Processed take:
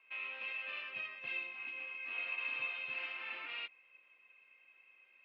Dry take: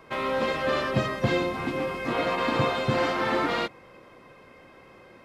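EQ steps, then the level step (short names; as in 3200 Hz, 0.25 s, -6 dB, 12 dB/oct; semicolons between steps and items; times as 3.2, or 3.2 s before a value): band-pass 2600 Hz, Q 12; air absorption 160 m; +3.5 dB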